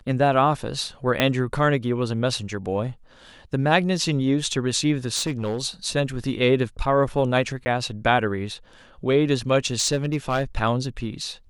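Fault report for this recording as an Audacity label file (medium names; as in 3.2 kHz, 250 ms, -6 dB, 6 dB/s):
1.200000	1.200000	pop -5 dBFS
5.150000	5.600000	clipped -20.5 dBFS
7.650000	7.660000	dropout 10 ms
9.740000	10.430000	clipped -16 dBFS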